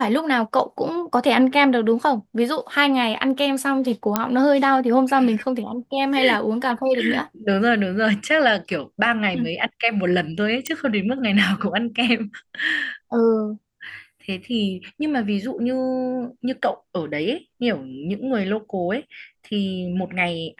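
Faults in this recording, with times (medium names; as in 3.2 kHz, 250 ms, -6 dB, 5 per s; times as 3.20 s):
4.16 s: pop -3 dBFS
10.67 s: pop -10 dBFS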